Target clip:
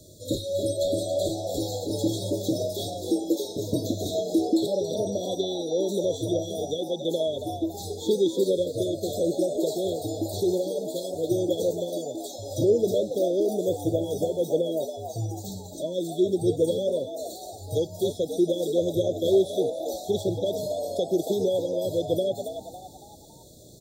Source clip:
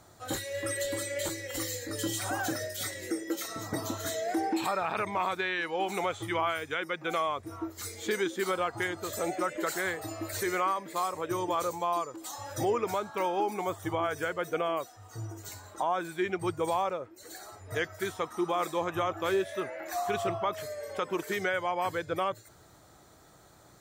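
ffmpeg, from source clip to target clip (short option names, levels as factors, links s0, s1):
-filter_complex "[0:a]asettb=1/sr,asplit=3[s0][s1][s2];[s0]atrim=end=4.744[s3];[s1]atrim=start=4.74:end=6.78,asetpts=PTS-STARTPTS,afade=t=in:d=0.004:c=qsin,afade=t=out:st=2.036:d=0.004:c=qsin,aeval=exprs='val(0)+0.00251*sin(2*PI*5800*n/s)':c=same[s4];[s2]atrim=start=6.776[s5];[s3][s4]acrossfade=d=0.004:c1=hsin:c2=qsin[s6];[s6][s5]acrossfade=d=0.004:c1=qsin:c2=hsin,acrossover=split=190|670|4000[s7][s8][s9][s10];[s10]acompressor=threshold=0.00251:ratio=6[s11];[s7][s8][s9][s11]amix=inputs=4:normalize=0,afftfilt=real='re*(1-between(b*sr/4096,650,3300))':imag='im*(1-between(b*sr/4096,650,3300))':win_size=4096:overlap=0.75,asplit=5[s12][s13][s14][s15][s16];[s13]adelay=278,afreqshift=83,volume=0.355[s17];[s14]adelay=556,afreqshift=166,volume=0.138[s18];[s15]adelay=834,afreqshift=249,volume=0.0537[s19];[s16]adelay=1112,afreqshift=332,volume=0.0211[s20];[s12][s17][s18][s19][s20]amix=inputs=5:normalize=0,volume=2.66"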